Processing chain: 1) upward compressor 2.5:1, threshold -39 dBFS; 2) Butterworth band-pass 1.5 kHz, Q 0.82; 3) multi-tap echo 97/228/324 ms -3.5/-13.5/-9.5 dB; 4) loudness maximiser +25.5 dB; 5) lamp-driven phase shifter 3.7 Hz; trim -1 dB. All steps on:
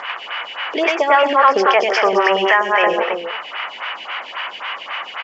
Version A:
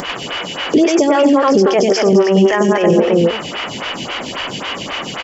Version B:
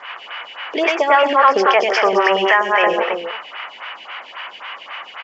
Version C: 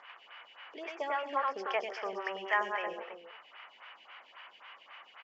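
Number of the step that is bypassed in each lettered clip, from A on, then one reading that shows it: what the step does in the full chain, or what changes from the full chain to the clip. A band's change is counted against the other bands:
2, 250 Hz band +15.5 dB; 1, momentary loudness spread change +5 LU; 4, crest factor change +5.5 dB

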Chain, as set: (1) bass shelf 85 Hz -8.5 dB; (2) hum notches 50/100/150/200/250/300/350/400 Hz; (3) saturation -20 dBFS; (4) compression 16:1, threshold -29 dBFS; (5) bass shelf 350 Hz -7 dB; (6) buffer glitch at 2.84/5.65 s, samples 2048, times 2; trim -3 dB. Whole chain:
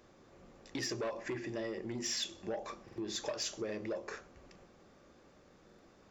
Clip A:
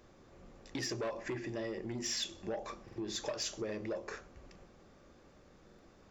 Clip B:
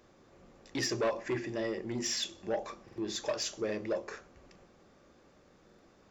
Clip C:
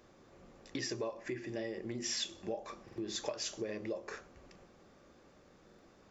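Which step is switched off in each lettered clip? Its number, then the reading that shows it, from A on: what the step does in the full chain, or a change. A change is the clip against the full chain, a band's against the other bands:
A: 1, 125 Hz band +2.5 dB; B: 4, mean gain reduction 1.5 dB; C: 3, distortion -12 dB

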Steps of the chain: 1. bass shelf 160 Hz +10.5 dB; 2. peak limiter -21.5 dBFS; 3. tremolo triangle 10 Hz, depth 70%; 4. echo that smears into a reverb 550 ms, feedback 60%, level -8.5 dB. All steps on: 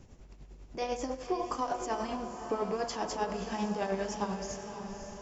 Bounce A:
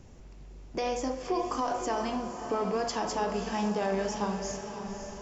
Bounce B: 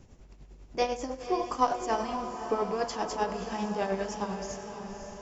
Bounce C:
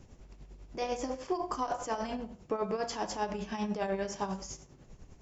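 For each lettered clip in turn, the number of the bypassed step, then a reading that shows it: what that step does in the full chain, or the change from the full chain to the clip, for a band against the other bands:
3, crest factor change -2.0 dB; 2, crest factor change +5.5 dB; 4, echo-to-direct -6.5 dB to none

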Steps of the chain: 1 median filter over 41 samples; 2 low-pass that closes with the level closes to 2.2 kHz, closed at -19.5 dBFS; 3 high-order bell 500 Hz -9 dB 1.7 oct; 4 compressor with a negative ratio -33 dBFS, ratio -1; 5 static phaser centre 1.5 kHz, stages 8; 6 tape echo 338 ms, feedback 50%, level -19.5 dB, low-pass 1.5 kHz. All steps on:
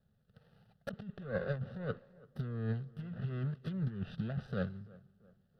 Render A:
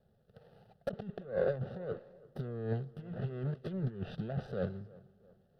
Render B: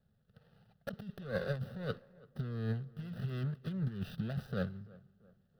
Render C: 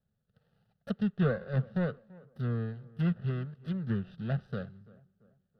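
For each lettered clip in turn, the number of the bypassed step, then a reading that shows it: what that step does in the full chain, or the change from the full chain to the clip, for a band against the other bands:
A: 3, 500 Hz band +6.5 dB; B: 2, 4 kHz band +4.5 dB; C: 4, 250 Hz band +3.0 dB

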